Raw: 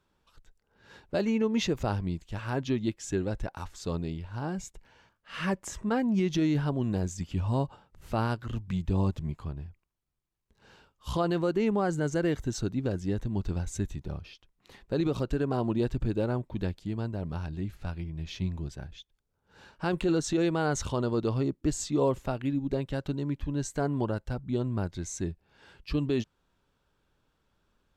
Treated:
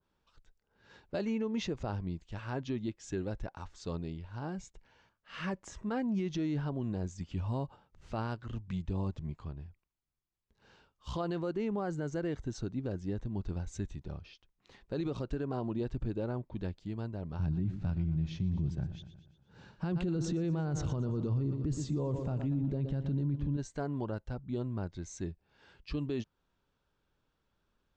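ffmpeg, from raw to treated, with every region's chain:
-filter_complex "[0:a]asettb=1/sr,asplit=3[a][b][c];[a]atrim=end=17.394[d];[b]atrim=start=17.39:end=23.57,asetpts=PTS-STARTPTS,afade=t=in:d=0.004:c=qsin,afade=t=out:st=6.176:d=0.004:c=qsin,equalizer=f=140:t=o:w=2:g=14,aecho=1:1:119|238|357|476|595|714:0.2|0.112|0.0626|0.035|0.0196|0.011,atrim=end_sample=272538[e];[c]atrim=start=23.566[f];[d][e]acrossfade=d=0.004:c1=hsin:c2=qsin[g];[g][f]acrossfade=d=0.004:c1=qsin:c2=hsin,lowpass=f=7.1k:w=0.5412,lowpass=f=7.1k:w=1.3066,alimiter=limit=-20dB:level=0:latency=1:release=25,adynamicequalizer=threshold=0.00398:dfrequency=1500:dqfactor=0.7:tfrequency=1500:tqfactor=0.7:attack=5:release=100:ratio=0.375:range=2:mode=cutabove:tftype=highshelf,volume=-5.5dB"

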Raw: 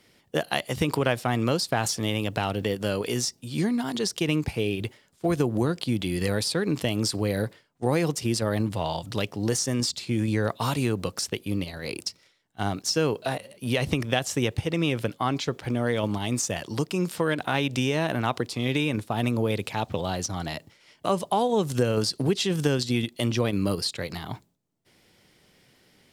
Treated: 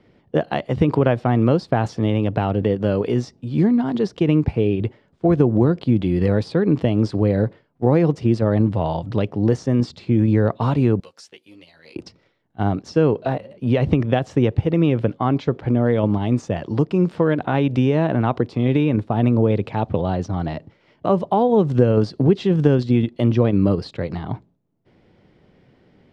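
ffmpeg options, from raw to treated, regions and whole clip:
-filter_complex "[0:a]asettb=1/sr,asplit=3[a][b][c];[a]atrim=end=11.004[d];[b]atrim=start=11:end=11.96,asetpts=PTS-STARTPTS,afade=t=in:d=0.004:c=qsin,afade=t=out:st=0.956:d=0.004:c=qsin,aderivative,bandreject=f=1.2k:w=14,asplit=2[e][f];[f]adelay=13,volume=-3dB[g];[e][g]amix=inputs=2:normalize=0,atrim=end_sample=42336[h];[c]atrim=start=11.956[i];[d][h]acrossfade=d=0.004:c1=hsin:c2=qsin[j];[j][i]acrossfade=d=0.004:c1=qsin:c2=hsin,lowpass=3.7k,tiltshelf=f=1.3k:g=8,volume=1.5dB"

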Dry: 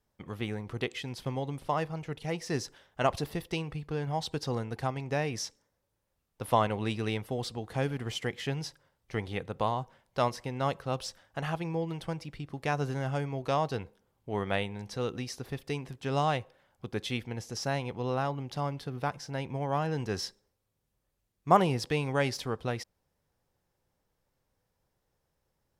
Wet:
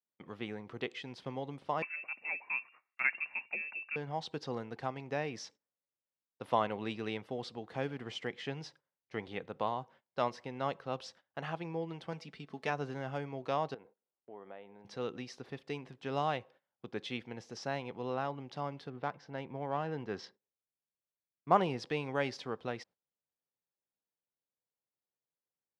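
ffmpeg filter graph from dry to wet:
-filter_complex "[0:a]asettb=1/sr,asplit=3[a][b][c];[a]atrim=end=1.824[d];[b]atrim=start=1.82:end=3.96,asetpts=PTS-STARTPTS,afade=t=in:d=0.004:c=qsin,afade=t=out:st=2.136:d=0.004:c=qsin,lowpass=f=2.4k:t=q:w=0.5098,lowpass=f=2.4k:t=q:w=0.6013,lowpass=f=2.4k:t=q:w=0.9,lowpass=f=2.4k:t=q:w=2.563,afreqshift=-2800,lowshelf=f=78:g=-9.5[e];[c]atrim=start=3.956[f];[d][e]acrossfade=d=0.004:c1=hsin:c2=qsin[g];[g][f]acrossfade=d=0.004:c1=qsin:c2=hsin,asettb=1/sr,asplit=3[h][i][j];[h]atrim=end=12.124[k];[i]atrim=start=12.12:end=12.7,asetpts=PTS-STARTPTS,afade=t=in:d=0.004:c=qsin,afade=t=out:st=0.576:d=0.004:c=qsin,highshelf=f=3.7k:g=6.5,aecho=1:1:4.6:0.53,atrim=end_sample=25578[l];[j]atrim=start=12.696[m];[k][l]acrossfade=d=0.004:c1=hsin:c2=qsin[n];[n][m]acrossfade=d=0.004:c1=qsin:c2=hsin,asettb=1/sr,asplit=3[o][p][q];[o]atrim=end=13.744[r];[p]atrim=start=13.74:end=14.85,asetpts=PTS-STARTPTS,afade=t=in:d=0.004:c=qsin,afade=t=out:st=1.106:d=0.004:c=qsin,acompressor=threshold=-39dB:ratio=4:attack=3.2:release=140:knee=1:detection=peak,bandpass=f=610:t=q:w=0.73[s];[q]atrim=start=14.846[t];[r][s]acrossfade=d=0.004:c1=hsin:c2=qsin[u];[u][t]acrossfade=d=0.004:c1=qsin:c2=hsin,asettb=1/sr,asplit=3[v][w][x];[v]atrim=end=18.904[y];[w]atrim=start=18.9:end=21.55,asetpts=PTS-STARTPTS,afade=t=in:d=0.004:c=qsin,afade=t=out:st=2.646:d=0.004:c=qsin,adynamicsmooth=sensitivity=5:basefreq=3.2k,bandreject=f=2.5k:w=26[z];[x]atrim=start=21.546[aa];[y][z]acrossfade=d=0.004:c1=hsin:c2=qsin[ab];[ab][aa]acrossfade=d=0.004:c1=qsin:c2=hsin,lowpass=4.4k,agate=range=-17dB:threshold=-53dB:ratio=16:detection=peak,highpass=180,volume=-4.5dB"

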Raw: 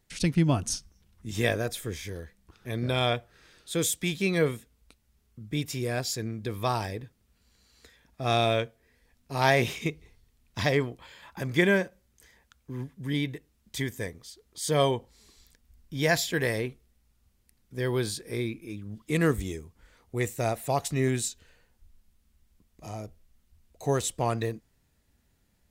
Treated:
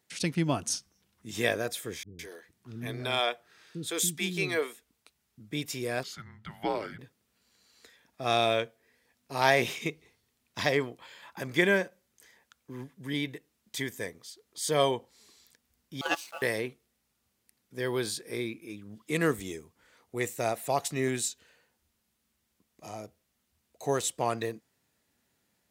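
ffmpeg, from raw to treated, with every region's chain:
-filter_complex "[0:a]asettb=1/sr,asplit=3[a][b][c];[a]atrim=end=2.034[d];[b]atrim=start=2.03:end=5.4,asetpts=PTS-STARTPTS,afade=t=in:d=0.004:c=qsin,afade=t=out:st=3.366:d=0.004:c=qsin,bandreject=f=530:w=6.4,acrossover=split=300[e][f];[f]adelay=160[g];[e][g]amix=inputs=2:normalize=0,atrim=end_sample=148617[h];[c]atrim=start=5.396[i];[d][h]acrossfade=d=0.004:c1=hsin:c2=qsin[j];[j][i]acrossfade=d=0.004:c1=qsin:c2=hsin,asettb=1/sr,asplit=3[k][l][m];[k]atrim=end=6.034[n];[l]atrim=start=6.03:end=6.99,asetpts=PTS-STARTPTS,afade=t=in:d=0.004:c=qsin,afade=t=out:st=0.956:d=0.004:c=qsin,acrossover=split=200 3400:gain=0.0708 1 0.178[o][p][q];[o][p][q]amix=inputs=3:normalize=0,afreqshift=-320[r];[m]atrim=start=6.986[s];[n][r]acrossfade=d=0.004:c1=hsin:c2=qsin[t];[t][s]acrossfade=d=0.004:c1=qsin:c2=hsin,asettb=1/sr,asplit=3[u][v][w];[u]atrim=end=16.014[x];[v]atrim=start=16.01:end=16.42,asetpts=PTS-STARTPTS,afade=t=in:d=0.004:c=qsin,afade=t=out:st=0.406:d=0.004:c=qsin,agate=range=-11dB:threshold=-23dB:ratio=16:release=100:detection=peak,aeval=exprs='val(0)*sin(2*PI*1000*n/s)':c=same,aeval=exprs='val(0)*gte(abs(val(0)),0.00355)':c=same[y];[w]atrim=start=16.416[z];[x][y]acrossfade=d=0.004:c1=hsin:c2=qsin[aa];[aa][z]acrossfade=d=0.004:c1=qsin:c2=hsin,highpass=99,lowshelf=f=170:g=-11.5"

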